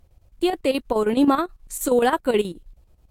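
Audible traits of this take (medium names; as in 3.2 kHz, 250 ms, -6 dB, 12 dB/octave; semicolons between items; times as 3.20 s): a quantiser's noise floor 12-bit, dither none; chopped level 9.4 Hz, depth 65%, duty 70%; Vorbis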